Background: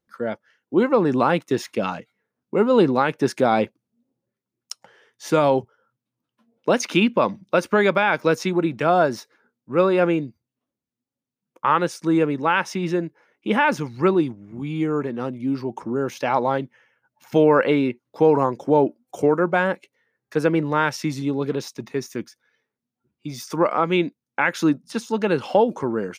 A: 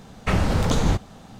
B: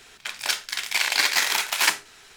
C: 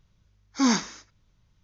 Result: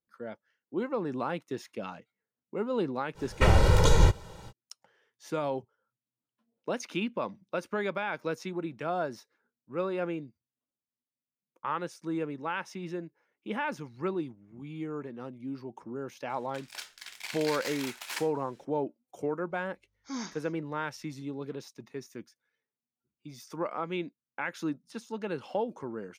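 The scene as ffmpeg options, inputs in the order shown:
ffmpeg -i bed.wav -i cue0.wav -i cue1.wav -i cue2.wav -filter_complex "[0:a]volume=-14dB[link_01];[1:a]aecho=1:1:2.1:0.98,atrim=end=1.39,asetpts=PTS-STARTPTS,volume=-3.5dB,afade=type=in:duration=0.05,afade=type=out:start_time=1.34:duration=0.05,adelay=3140[link_02];[2:a]atrim=end=2.36,asetpts=PTS-STARTPTS,volume=-17dB,afade=type=in:duration=0.004:curve=hsin,afade=type=out:start_time=2.356:duration=0.004:curve=hsin,adelay=16290[link_03];[3:a]atrim=end=1.63,asetpts=PTS-STARTPTS,volume=-15.5dB,afade=type=in:duration=0.004:curve=hsin,afade=type=out:start_time=1.626:duration=0.004:curve=hsin,adelay=19500[link_04];[link_01][link_02][link_03][link_04]amix=inputs=4:normalize=0" out.wav

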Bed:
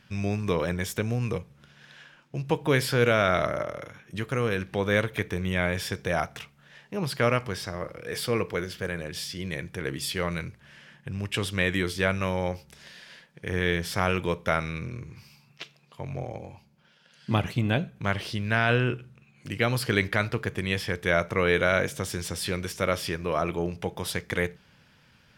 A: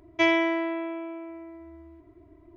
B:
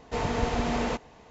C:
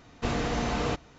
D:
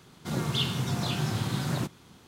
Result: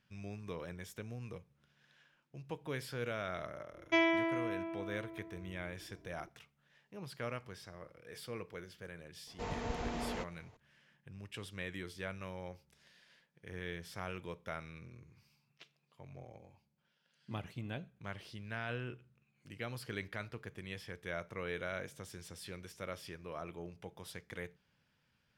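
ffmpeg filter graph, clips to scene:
ffmpeg -i bed.wav -i cue0.wav -i cue1.wav -filter_complex "[0:a]volume=-17.5dB[link_01];[1:a]atrim=end=2.56,asetpts=PTS-STARTPTS,volume=-7.5dB,afade=type=in:duration=0.004:curve=hsin,afade=type=out:start_time=2.556:duration=0.004:curve=hsin,adelay=164493S[link_02];[2:a]atrim=end=1.3,asetpts=PTS-STARTPTS,volume=-11.5dB,afade=type=in:duration=0.004:curve=hsin,afade=type=out:start_time=1.296:duration=0.004:curve=hsin,adelay=9270[link_03];[link_01][link_02][link_03]amix=inputs=3:normalize=0" out.wav

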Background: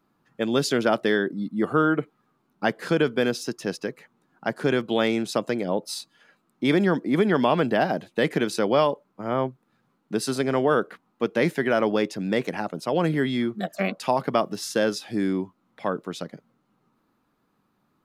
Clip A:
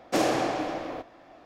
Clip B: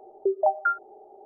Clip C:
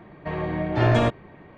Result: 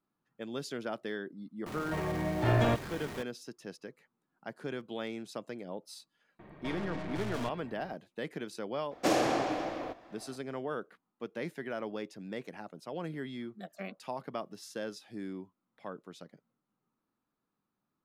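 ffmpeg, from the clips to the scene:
ffmpeg -i bed.wav -i cue0.wav -i cue1.wav -i cue2.wav -filter_complex "[3:a]asplit=2[link_01][link_02];[0:a]volume=-16dB[link_03];[link_01]aeval=exprs='val(0)+0.5*0.0299*sgn(val(0))':channel_layout=same[link_04];[link_02]aeval=exprs='(tanh(63.1*val(0)+0.7)-tanh(0.7))/63.1':channel_layout=same[link_05];[link_04]atrim=end=1.57,asetpts=PTS-STARTPTS,volume=-8dB,afade=type=in:duration=0.004:curve=hsin,afade=type=out:start_time=1.566:duration=0.004:curve=hsin,adelay=1660[link_06];[link_05]atrim=end=1.57,asetpts=PTS-STARTPTS,volume=-2.5dB,afade=type=in:duration=0.004:curve=hsin,afade=type=out:start_time=1.566:duration=0.004:curve=hsin,adelay=6390[link_07];[1:a]atrim=end=1.45,asetpts=PTS-STARTPTS,volume=-3dB,afade=type=in:duration=0.004:curve=hsin,afade=type=out:start_time=1.446:duration=0.004:curve=hsin,adelay=8910[link_08];[link_03][link_06][link_07][link_08]amix=inputs=4:normalize=0" out.wav

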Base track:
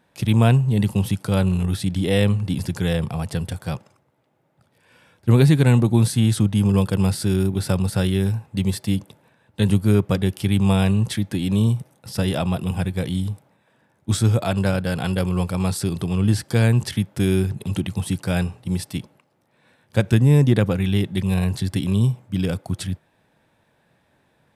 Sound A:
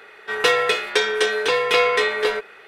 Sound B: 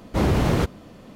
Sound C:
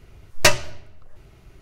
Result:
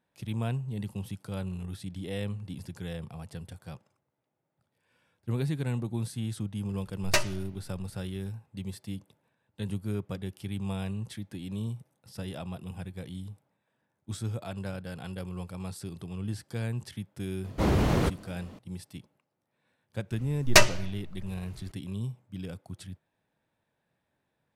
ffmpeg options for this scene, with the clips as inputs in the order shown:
ffmpeg -i bed.wav -i cue0.wav -i cue1.wav -i cue2.wav -filter_complex "[3:a]asplit=2[link_01][link_02];[0:a]volume=-16dB[link_03];[link_01]atrim=end=1.61,asetpts=PTS-STARTPTS,volume=-10dB,afade=type=in:duration=0.004:curve=hsin,afade=type=out:start_time=1.606:duration=0.004:curve=hsin,adelay=6690[link_04];[2:a]atrim=end=1.15,asetpts=PTS-STARTPTS,volume=-4.5dB,afade=type=in:duration=0.004:curve=hsin,afade=type=out:start_time=1.146:duration=0.004:curve=hsin,adelay=17440[link_05];[link_02]atrim=end=1.61,asetpts=PTS-STARTPTS,volume=-2dB,afade=type=in:duration=0.004:curve=hsin,afade=type=out:start_time=1.606:duration=0.004:curve=hsin,adelay=20110[link_06];[link_03][link_04][link_05][link_06]amix=inputs=4:normalize=0" out.wav

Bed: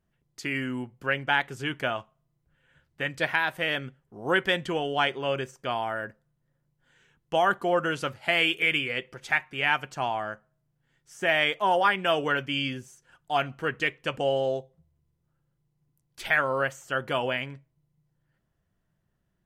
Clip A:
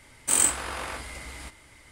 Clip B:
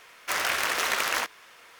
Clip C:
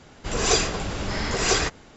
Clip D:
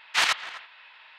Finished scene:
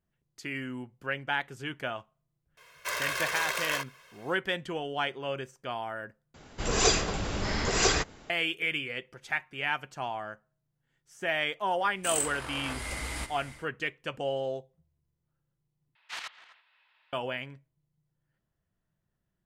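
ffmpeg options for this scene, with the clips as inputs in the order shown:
ffmpeg -i bed.wav -i cue0.wav -i cue1.wav -i cue2.wav -i cue3.wav -filter_complex "[0:a]volume=-6dB[link_01];[2:a]aecho=1:1:1.9:0.96[link_02];[1:a]dynaudnorm=framelen=290:gausssize=3:maxgain=16dB[link_03];[link_01]asplit=3[link_04][link_05][link_06];[link_04]atrim=end=6.344[link_07];[3:a]atrim=end=1.96,asetpts=PTS-STARTPTS,volume=-3dB[link_08];[link_05]atrim=start=8.296:end=15.954[link_09];[4:a]atrim=end=1.18,asetpts=PTS-STARTPTS,volume=-17dB[link_10];[link_06]atrim=start=17.126[link_11];[link_02]atrim=end=1.79,asetpts=PTS-STARTPTS,volume=-8dB,afade=type=in:duration=0.004:curve=hsin,afade=type=out:start_time=1.786:duration=0.004:curve=hsin,adelay=2570[link_12];[link_03]atrim=end=1.91,asetpts=PTS-STARTPTS,volume=-10.5dB,afade=type=in:duration=0.05,afade=type=out:start_time=1.86:duration=0.05,adelay=11760[link_13];[link_07][link_08]acrossfade=duration=0.004:curve1=hsin:curve2=hsin[link_14];[link_14][link_09]acrossfade=duration=0.004:curve1=hsin:curve2=hsin[link_15];[link_15][link_10]acrossfade=duration=0.004:curve1=hsin:curve2=hsin[link_16];[link_16][link_11]acrossfade=duration=0.004:curve1=hsin:curve2=hsin[link_17];[link_17][link_12][link_13]amix=inputs=3:normalize=0" out.wav

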